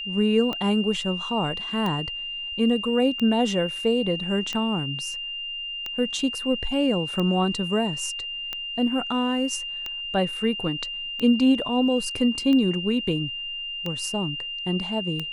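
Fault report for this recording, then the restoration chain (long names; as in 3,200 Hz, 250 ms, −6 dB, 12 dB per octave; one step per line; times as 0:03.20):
scratch tick 45 rpm −16 dBFS
whistle 2,800 Hz −30 dBFS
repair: click removal
notch filter 2,800 Hz, Q 30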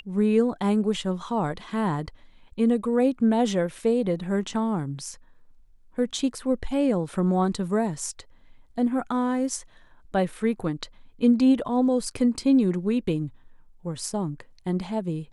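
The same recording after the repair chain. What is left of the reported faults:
none of them is left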